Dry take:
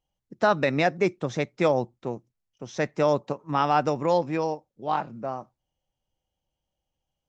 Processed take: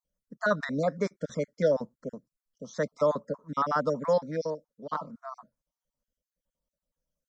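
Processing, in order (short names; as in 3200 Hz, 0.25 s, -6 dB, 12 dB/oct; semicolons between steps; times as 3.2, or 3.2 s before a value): random spectral dropouts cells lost 37%; fixed phaser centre 530 Hz, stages 8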